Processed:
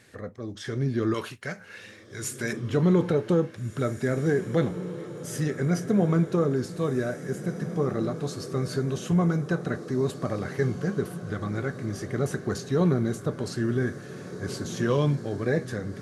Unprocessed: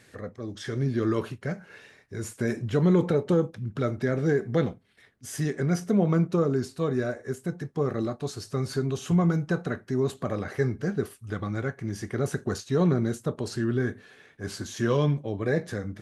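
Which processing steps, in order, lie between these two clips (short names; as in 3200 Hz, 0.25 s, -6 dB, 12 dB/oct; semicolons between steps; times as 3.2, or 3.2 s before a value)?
1.14–2.53 tilt shelf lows -7.5 dB, about 850 Hz; diffused feedback echo 1.796 s, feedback 55%, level -12 dB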